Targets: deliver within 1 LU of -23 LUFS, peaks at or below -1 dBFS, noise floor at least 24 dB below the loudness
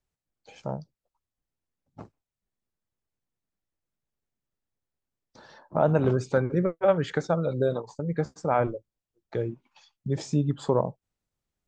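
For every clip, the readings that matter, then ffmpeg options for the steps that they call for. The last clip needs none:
loudness -27.5 LUFS; peak level -9.0 dBFS; loudness target -23.0 LUFS
-> -af "volume=1.68"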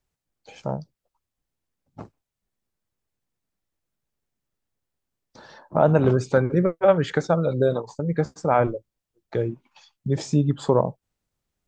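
loudness -23.0 LUFS; peak level -4.5 dBFS; noise floor -85 dBFS

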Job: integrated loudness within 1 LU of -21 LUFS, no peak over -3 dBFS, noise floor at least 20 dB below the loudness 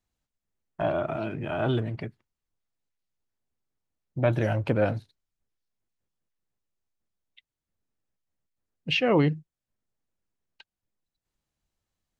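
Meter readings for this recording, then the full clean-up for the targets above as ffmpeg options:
loudness -27.0 LUFS; peak level -9.5 dBFS; loudness target -21.0 LUFS
-> -af "volume=2"

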